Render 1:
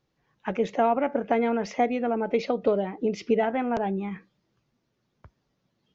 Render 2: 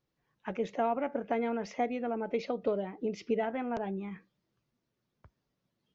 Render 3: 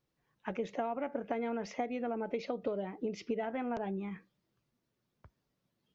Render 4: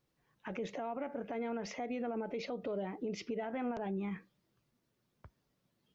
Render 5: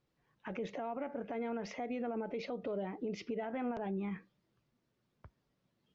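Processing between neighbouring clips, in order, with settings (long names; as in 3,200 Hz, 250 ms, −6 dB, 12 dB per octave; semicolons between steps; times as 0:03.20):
notch filter 800 Hz, Q 24; level −7.5 dB
downward compressor, threshold −31 dBFS, peak gain reduction 7 dB
brickwall limiter −32.5 dBFS, peak gain reduction 11 dB; level +2.5 dB
high-frequency loss of the air 80 metres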